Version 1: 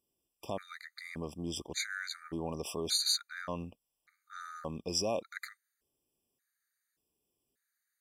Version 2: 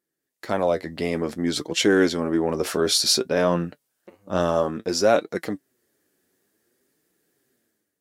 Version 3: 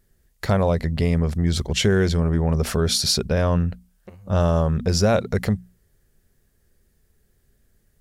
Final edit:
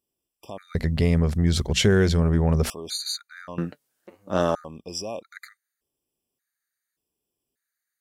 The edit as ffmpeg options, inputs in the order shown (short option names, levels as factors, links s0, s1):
-filter_complex "[0:a]asplit=3[s0][s1][s2];[s0]atrim=end=0.752[s3];[2:a]atrim=start=0.748:end=2.702[s4];[s1]atrim=start=2.698:end=3.582[s5];[1:a]atrim=start=3.578:end=4.552[s6];[s2]atrim=start=4.548[s7];[s3][s4]acrossfade=d=0.004:c1=hsin:c2=hsin[s8];[s8][s5]acrossfade=d=0.004:c1=hsin:c2=hsin[s9];[s9][s6]acrossfade=d=0.004:c1=hsin:c2=hsin[s10];[s10][s7]acrossfade=d=0.004:c1=hsin:c2=hsin"